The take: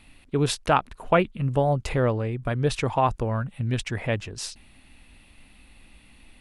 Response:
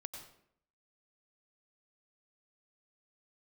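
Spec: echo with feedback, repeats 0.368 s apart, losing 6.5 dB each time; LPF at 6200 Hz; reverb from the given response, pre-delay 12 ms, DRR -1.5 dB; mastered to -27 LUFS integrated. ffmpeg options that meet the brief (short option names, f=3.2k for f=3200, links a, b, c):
-filter_complex "[0:a]lowpass=6.2k,aecho=1:1:368|736|1104|1472|1840|2208:0.473|0.222|0.105|0.0491|0.0231|0.0109,asplit=2[a][b];[1:a]atrim=start_sample=2205,adelay=12[c];[b][c]afir=irnorm=-1:irlink=0,volume=4.5dB[d];[a][d]amix=inputs=2:normalize=0,volume=-6dB"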